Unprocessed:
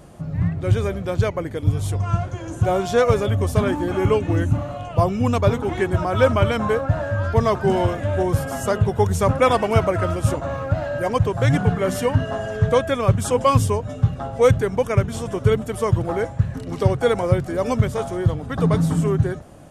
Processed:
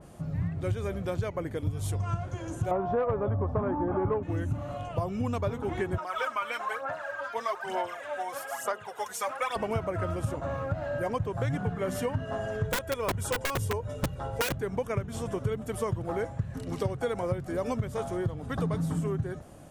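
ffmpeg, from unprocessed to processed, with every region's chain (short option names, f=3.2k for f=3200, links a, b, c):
-filter_complex "[0:a]asettb=1/sr,asplit=3[a][b][c];[a]atrim=end=2.714[d];[b]atrim=start=2.71:end=4.23,asetpts=PTS-STARTPTS,afade=t=in:d=0.004:c=qsin,afade=t=out:st=1.516:d=0.004:c=qsin,lowpass=f=1k:t=q:w=1.8,acontrast=53[e];[c]atrim=start=4.226[f];[d][e]acrossfade=d=0.004:c1=hsin:c2=qsin[g];[g][f]acrossfade=d=0.004:c1=qsin:c2=hsin,asettb=1/sr,asplit=3[h][i][j];[h]atrim=end=5.984[k];[i]atrim=start=5.98:end=9.56,asetpts=PTS-STARTPTS,afade=t=in:d=0.004:c=qsin,afade=t=out:st=3.576:d=0.004:c=qsin,highpass=880,aphaser=in_gain=1:out_gain=1:delay=4.2:decay=0.62:speed=1.1:type=sinusoidal[l];[j]atrim=start=9.556[m];[k][l]acrossfade=d=0.004:c1=hsin:c2=qsin[n];[n][m]acrossfade=d=0.004:c1=qsin:c2=hsin,asettb=1/sr,asplit=3[o][p][q];[o]atrim=end=12.644[r];[p]atrim=start=12.64:end=14.55,asetpts=PTS-STARTPTS,afade=t=in:d=0.004:c=qsin,afade=t=out:st=1.906:d=0.004:c=qsin,highshelf=f=11k:g=7.5,aecho=1:1:2.1:0.55,atrim=end_sample=84231,aeval=exprs='(mod(2.82*val(0)+1,2)-1)/2.82':c=same[s];[q]atrim=start=14.546[t];[r][s]acrossfade=d=0.004:c1=hsin:c2=qsin[u];[u][t]acrossfade=d=0.004:c1=qsin:c2=hsin,highshelf=f=9.2k:g=6.5,acompressor=threshold=-21dB:ratio=5,adynamicequalizer=threshold=0.00708:dfrequency=2800:dqfactor=0.7:tfrequency=2800:tqfactor=0.7:attack=5:release=100:ratio=0.375:range=3:mode=cutabove:tftype=highshelf,volume=-5.5dB"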